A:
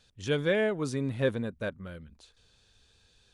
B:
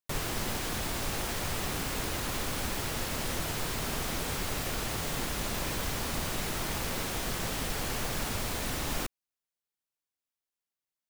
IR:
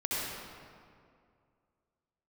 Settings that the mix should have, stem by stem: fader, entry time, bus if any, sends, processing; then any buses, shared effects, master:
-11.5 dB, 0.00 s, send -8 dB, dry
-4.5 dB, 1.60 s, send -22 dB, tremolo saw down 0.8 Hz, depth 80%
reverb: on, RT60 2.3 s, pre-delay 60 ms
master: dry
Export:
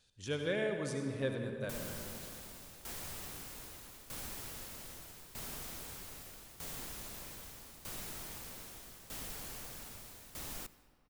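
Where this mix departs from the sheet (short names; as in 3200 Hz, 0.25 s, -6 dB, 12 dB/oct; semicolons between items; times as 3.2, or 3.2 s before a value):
stem B -4.5 dB -> -14.0 dB; master: extra high shelf 6200 Hz +10 dB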